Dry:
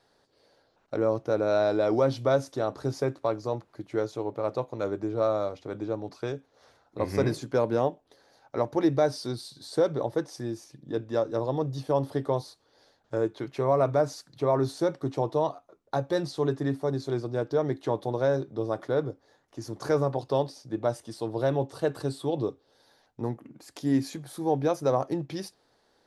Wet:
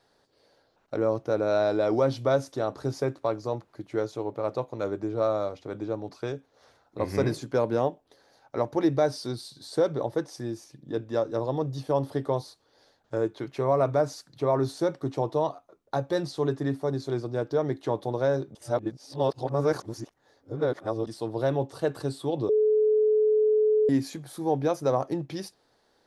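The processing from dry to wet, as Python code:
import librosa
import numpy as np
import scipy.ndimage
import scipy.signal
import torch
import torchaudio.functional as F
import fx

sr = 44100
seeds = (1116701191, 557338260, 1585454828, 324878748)

y = fx.edit(x, sr, fx.reverse_span(start_s=18.55, length_s=2.52),
    fx.bleep(start_s=22.49, length_s=1.4, hz=429.0, db=-18.5), tone=tone)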